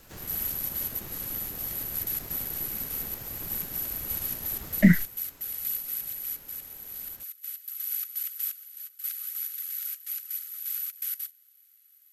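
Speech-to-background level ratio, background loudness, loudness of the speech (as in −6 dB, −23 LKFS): 9.5 dB, −31.5 LKFS, −22.0 LKFS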